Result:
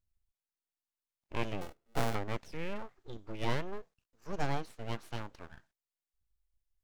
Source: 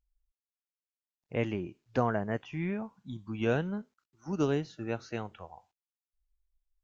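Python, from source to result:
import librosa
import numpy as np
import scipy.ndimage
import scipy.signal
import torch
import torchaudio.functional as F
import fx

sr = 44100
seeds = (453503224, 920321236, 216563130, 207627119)

y = fx.sample_sort(x, sr, block=64, at=(1.61, 2.15))
y = np.abs(y)
y = y * librosa.db_to_amplitude(-1.5)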